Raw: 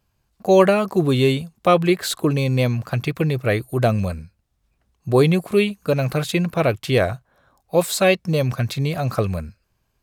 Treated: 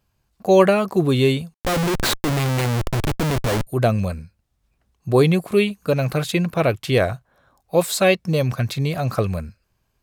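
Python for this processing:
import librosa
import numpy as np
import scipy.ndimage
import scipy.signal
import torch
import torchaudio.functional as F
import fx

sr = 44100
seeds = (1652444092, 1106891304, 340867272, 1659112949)

y = fx.schmitt(x, sr, flips_db=-25.0, at=(1.54, 3.67))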